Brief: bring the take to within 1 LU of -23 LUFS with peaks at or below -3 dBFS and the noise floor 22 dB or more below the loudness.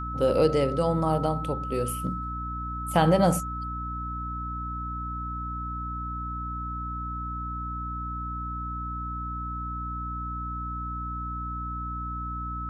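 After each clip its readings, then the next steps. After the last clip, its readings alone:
hum 60 Hz; highest harmonic 300 Hz; hum level -33 dBFS; steady tone 1.3 kHz; tone level -33 dBFS; loudness -29.5 LUFS; peak level -8.0 dBFS; loudness target -23.0 LUFS
-> hum notches 60/120/180/240/300 Hz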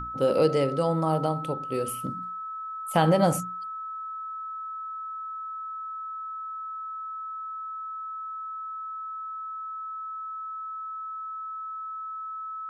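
hum not found; steady tone 1.3 kHz; tone level -33 dBFS
-> band-stop 1.3 kHz, Q 30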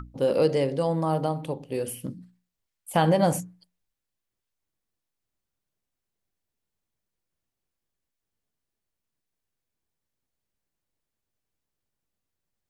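steady tone not found; loudness -25.5 LUFS; peak level -9.0 dBFS; loudness target -23.0 LUFS
-> trim +2.5 dB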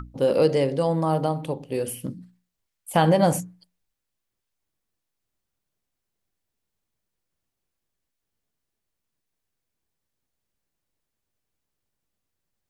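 loudness -23.0 LUFS; peak level -6.5 dBFS; noise floor -82 dBFS

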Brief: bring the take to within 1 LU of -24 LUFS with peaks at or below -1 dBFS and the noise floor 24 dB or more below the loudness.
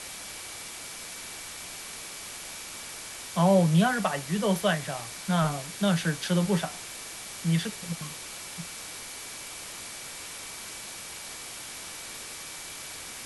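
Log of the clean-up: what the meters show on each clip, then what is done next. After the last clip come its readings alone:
steady tone 2.3 kHz; tone level -51 dBFS; noise floor -41 dBFS; noise floor target -55 dBFS; loudness -30.5 LUFS; peak level -11.0 dBFS; loudness target -24.0 LUFS
-> band-stop 2.3 kHz, Q 30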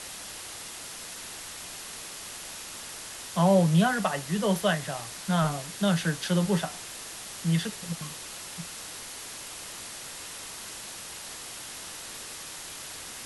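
steady tone not found; noise floor -41 dBFS; noise floor target -55 dBFS
-> noise reduction 14 dB, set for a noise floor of -41 dBFS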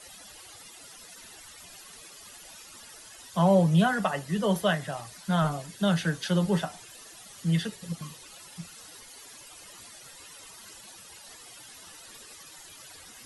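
noise floor -49 dBFS; noise floor target -51 dBFS
-> noise reduction 6 dB, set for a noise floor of -49 dBFS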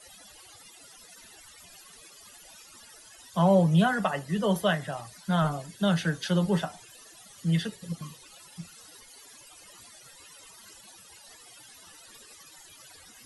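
noise floor -52 dBFS; loudness -27.0 LUFS; peak level -11.0 dBFS; loudness target -24.0 LUFS
-> trim +3 dB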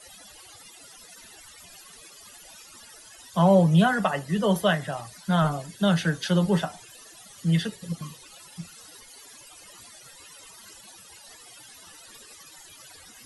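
loudness -24.0 LUFS; peak level -8.0 dBFS; noise floor -49 dBFS

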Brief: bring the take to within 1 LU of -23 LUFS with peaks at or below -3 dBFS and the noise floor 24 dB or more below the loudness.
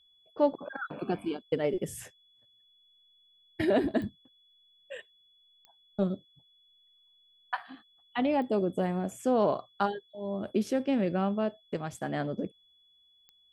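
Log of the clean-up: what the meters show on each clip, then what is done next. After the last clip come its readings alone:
clicks found 4; steady tone 3.4 kHz; tone level -62 dBFS; loudness -31.5 LUFS; peak level -13.5 dBFS; loudness target -23.0 LUFS
-> de-click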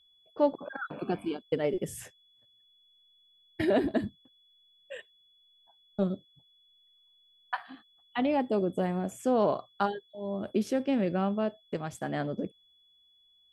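clicks found 0; steady tone 3.4 kHz; tone level -62 dBFS
-> band-stop 3.4 kHz, Q 30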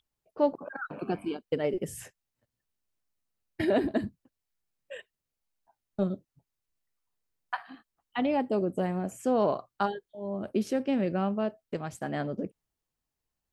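steady tone not found; loudness -31.5 LUFS; peak level -13.5 dBFS; loudness target -23.0 LUFS
-> trim +8.5 dB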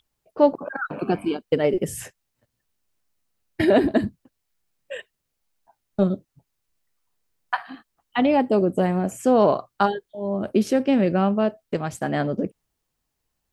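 loudness -23.0 LUFS; peak level -5.0 dBFS; noise floor -79 dBFS

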